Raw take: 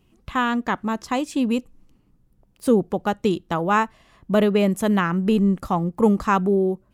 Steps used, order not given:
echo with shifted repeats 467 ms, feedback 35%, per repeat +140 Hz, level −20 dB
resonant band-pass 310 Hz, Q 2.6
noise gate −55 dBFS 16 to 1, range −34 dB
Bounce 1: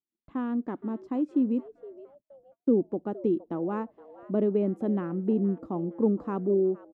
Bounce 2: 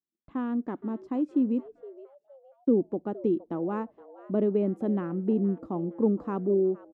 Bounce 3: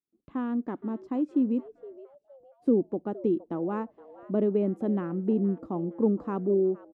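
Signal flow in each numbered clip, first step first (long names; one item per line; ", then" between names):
resonant band-pass, then echo with shifted repeats, then noise gate
resonant band-pass, then noise gate, then echo with shifted repeats
noise gate, then resonant band-pass, then echo with shifted repeats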